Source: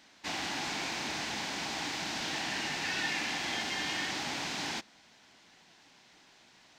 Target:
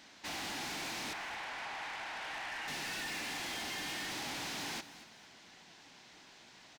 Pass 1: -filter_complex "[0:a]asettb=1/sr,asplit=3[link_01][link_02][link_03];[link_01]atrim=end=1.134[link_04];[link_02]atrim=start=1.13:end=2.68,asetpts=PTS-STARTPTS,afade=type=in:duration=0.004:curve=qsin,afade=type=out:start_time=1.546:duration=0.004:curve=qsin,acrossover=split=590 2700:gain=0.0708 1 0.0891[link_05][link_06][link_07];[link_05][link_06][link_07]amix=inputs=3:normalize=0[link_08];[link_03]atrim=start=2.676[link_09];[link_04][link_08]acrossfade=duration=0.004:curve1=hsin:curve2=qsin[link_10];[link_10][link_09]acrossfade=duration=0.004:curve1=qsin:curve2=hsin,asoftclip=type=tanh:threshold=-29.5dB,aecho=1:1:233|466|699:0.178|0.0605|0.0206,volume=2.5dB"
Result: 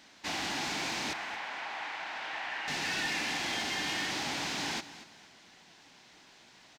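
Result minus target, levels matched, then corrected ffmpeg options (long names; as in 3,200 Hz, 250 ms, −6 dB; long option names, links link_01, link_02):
soft clipping: distortion −10 dB
-filter_complex "[0:a]asettb=1/sr,asplit=3[link_01][link_02][link_03];[link_01]atrim=end=1.134[link_04];[link_02]atrim=start=1.13:end=2.68,asetpts=PTS-STARTPTS,afade=type=in:duration=0.004:curve=qsin,afade=type=out:start_time=1.546:duration=0.004:curve=qsin,acrossover=split=590 2700:gain=0.0708 1 0.0891[link_05][link_06][link_07];[link_05][link_06][link_07]amix=inputs=3:normalize=0[link_08];[link_03]atrim=start=2.676[link_09];[link_04][link_08]acrossfade=duration=0.004:curve1=hsin:curve2=qsin[link_10];[link_10][link_09]acrossfade=duration=0.004:curve1=qsin:curve2=hsin,asoftclip=type=tanh:threshold=-41dB,aecho=1:1:233|466|699:0.178|0.0605|0.0206,volume=2.5dB"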